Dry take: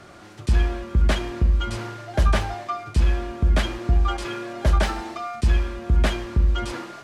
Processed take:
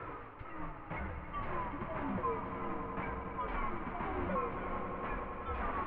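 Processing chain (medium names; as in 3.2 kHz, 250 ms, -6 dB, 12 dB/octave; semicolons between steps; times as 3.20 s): sawtooth pitch modulation -8.5 st, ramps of 1306 ms; peaking EQ 1.1 kHz +4.5 dB 1.1 oct; reverse; compression, threshold -32 dBFS, peak gain reduction 17 dB; reverse; peak limiter -29 dBFS, peak gain reduction 7.5 dB; mistuned SSB -280 Hz 210–2300 Hz; tape speed +20%; flange 0.63 Hz, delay 5.6 ms, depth 7.8 ms, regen -60%; on a send: echo with a slow build-up 93 ms, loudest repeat 5, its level -11.5 dB; on the sum: trim +5.5 dB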